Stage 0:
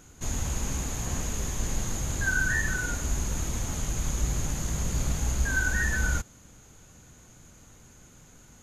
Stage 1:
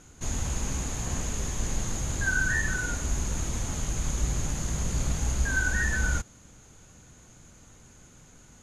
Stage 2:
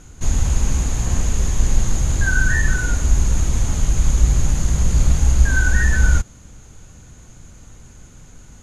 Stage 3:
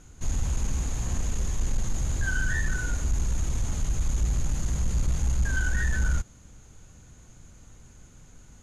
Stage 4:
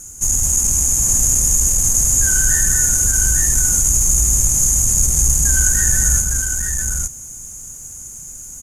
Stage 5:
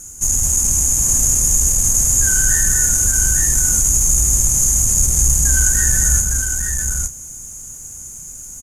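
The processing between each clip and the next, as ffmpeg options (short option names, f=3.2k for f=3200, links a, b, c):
-af "lowpass=f=11k:w=0.5412,lowpass=f=11k:w=1.3066"
-af "lowshelf=f=100:g=11,volume=5.5dB"
-af "asoftclip=type=tanh:threshold=-9.5dB,volume=-8dB"
-filter_complex "[0:a]aexciter=amount=15.1:drive=7.2:freq=6k,asplit=2[a][b];[b]aecho=0:1:208|858:0.501|0.631[c];[a][c]amix=inputs=2:normalize=0,volume=3dB"
-filter_complex "[0:a]asplit=2[a][b];[b]adelay=30,volume=-12dB[c];[a][c]amix=inputs=2:normalize=0"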